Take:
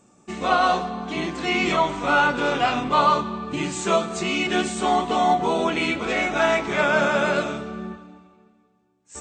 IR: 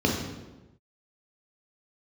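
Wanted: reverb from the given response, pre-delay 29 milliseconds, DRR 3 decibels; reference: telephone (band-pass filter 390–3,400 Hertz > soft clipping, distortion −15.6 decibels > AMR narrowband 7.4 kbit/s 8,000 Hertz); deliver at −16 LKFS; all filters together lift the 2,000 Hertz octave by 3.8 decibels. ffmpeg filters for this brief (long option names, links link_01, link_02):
-filter_complex "[0:a]equalizer=frequency=2000:width_type=o:gain=6,asplit=2[link_01][link_02];[1:a]atrim=start_sample=2205,adelay=29[link_03];[link_02][link_03]afir=irnorm=-1:irlink=0,volume=-17dB[link_04];[link_01][link_04]amix=inputs=2:normalize=0,highpass=390,lowpass=3400,asoftclip=threshold=-12.5dB,volume=6.5dB" -ar 8000 -c:a libopencore_amrnb -b:a 7400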